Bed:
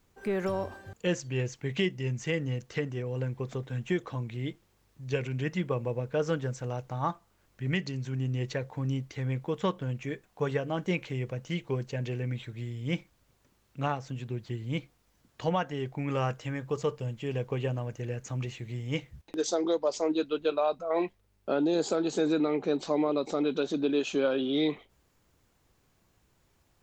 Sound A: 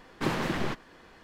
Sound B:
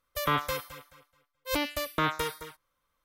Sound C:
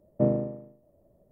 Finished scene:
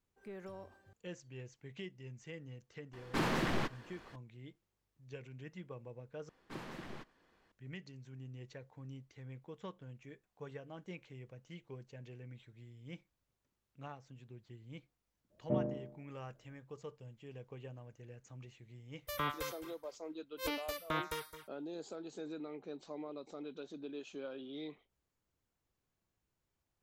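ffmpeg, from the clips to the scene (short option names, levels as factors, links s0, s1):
-filter_complex "[1:a]asplit=2[s0][s1];[0:a]volume=0.126[s2];[s0]volume=15.8,asoftclip=hard,volume=0.0631[s3];[s2]asplit=2[s4][s5];[s4]atrim=end=6.294[s6];[s1]atrim=end=1.23,asetpts=PTS-STARTPTS,volume=0.133[s7];[s5]atrim=start=7.516[s8];[s3]atrim=end=1.23,asetpts=PTS-STARTPTS,volume=0.708,afade=t=in:d=0.004:c=hsin,afade=t=out:st=1.226:d=0.004:c=hsin,adelay=2930[s9];[3:a]atrim=end=1.31,asetpts=PTS-STARTPTS,volume=0.316,afade=t=in:d=0.004:c=hsin,afade=t=out:st=1.306:d=0.004:c=hsin,adelay=15300[s10];[2:a]atrim=end=3.04,asetpts=PTS-STARTPTS,volume=0.335,afade=t=in:d=0.004:c=hsin,afade=t=out:st=3.036:d=0.004:c=hsin,adelay=834372S[s11];[s6][s7]acrossfade=d=0.004:c1=hsin:c2=hsin[s12];[s12][s8]acrossfade=d=0.004:c1=hsin:c2=hsin[s13];[s13][s9][s10][s11]amix=inputs=4:normalize=0"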